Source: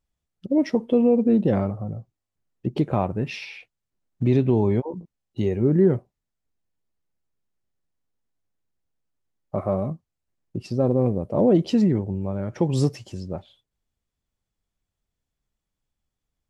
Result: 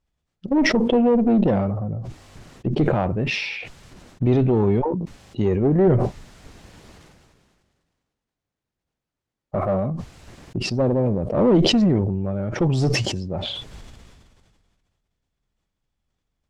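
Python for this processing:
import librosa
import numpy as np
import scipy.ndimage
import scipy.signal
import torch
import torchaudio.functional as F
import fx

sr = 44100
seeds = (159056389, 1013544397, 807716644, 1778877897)

y = fx.diode_clip(x, sr, knee_db=-18.5)
y = fx.air_absorb(y, sr, metres=65.0)
y = fx.sustainer(y, sr, db_per_s=30.0)
y = y * librosa.db_to_amplitude(4.0)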